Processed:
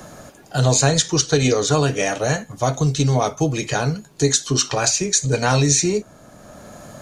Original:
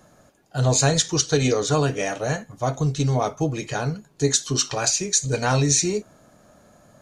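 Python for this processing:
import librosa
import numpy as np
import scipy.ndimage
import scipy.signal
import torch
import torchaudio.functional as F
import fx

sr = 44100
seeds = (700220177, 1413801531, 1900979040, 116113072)

y = fx.band_squash(x, sr, depth_pct=40)
y = F.gain(torch.from_numpy(y), 3.5).numpy()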